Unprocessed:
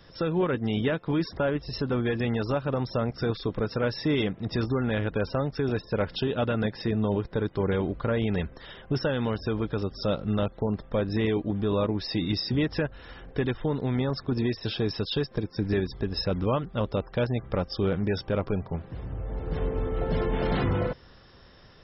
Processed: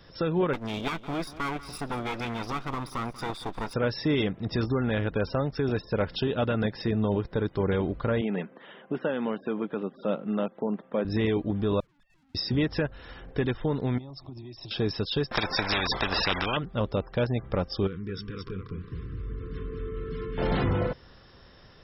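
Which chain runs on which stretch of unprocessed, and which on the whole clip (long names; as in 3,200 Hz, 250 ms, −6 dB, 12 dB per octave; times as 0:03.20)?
0:00.53–0:03.74: lower of the sound and its delayed copy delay 0.84 ms + parametric band 95 Hz −11 dB 2.4 octaves + single-tap delay 189 ms −16.5 dB
0:08.21–0:11.05: elliptic band-pass filter 190–3,100 Hz + high-frequency loss of the air 190 metres
0:11.80–0:12.35: three sine waves on the formant tracks + tube saturation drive 44 dB, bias 0.65 + drawn EQ curve 180 Hz 0 dB, 310 Hz −29 dB, 1,400 Hz −20 dB
0:13.98–0:14.71: downward compressor 16 to 1, threshold −35 dBFS + phaser with its sweep stopped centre 310 Hz, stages 8
0:15.31–0:16.57: spectral tilt −2.5 dB per octave + every bin compressed towards the loudest bin 10 to 1
0:17.87–0:20.38: downward compressor 4 to 1, threshold −33 dBFS + linear-phase brick-wall band-stop 500–1,000 Hz + single-tap delay 218 ms −5.5 dB
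whole clip: no processing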